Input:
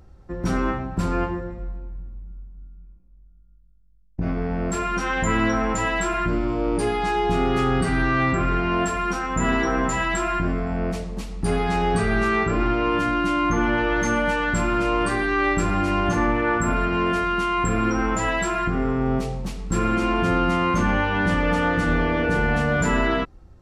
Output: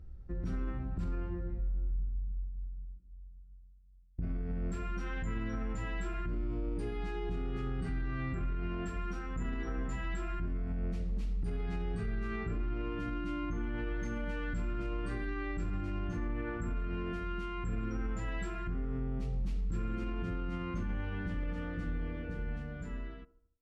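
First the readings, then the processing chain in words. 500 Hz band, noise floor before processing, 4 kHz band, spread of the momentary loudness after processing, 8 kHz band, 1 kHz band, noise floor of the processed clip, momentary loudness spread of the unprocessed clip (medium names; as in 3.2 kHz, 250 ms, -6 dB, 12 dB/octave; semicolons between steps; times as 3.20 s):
-19.0 dB, -50 dBFS, -21.0 dB, 4 LU, -25.5 dB, -23.0 dB, -53 dBFS, 7 LU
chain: fade out at the end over 3.31 s; FFT filter 140 Hz 0 dB, 1.3 kHz +9 dB, 8.6 kHz -7 dB; in parallel at +3 dB: compression, threshold -27 dBFS, peak gain reduction 15 dB; on the sum: amplifier tone stack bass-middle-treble 10-0-1; feedback echo behind a band-pass 75 ms, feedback 46%, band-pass 520 Hz, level -13.5 dB; peak limiter -28 dBFS, peak gain reduction 8 dB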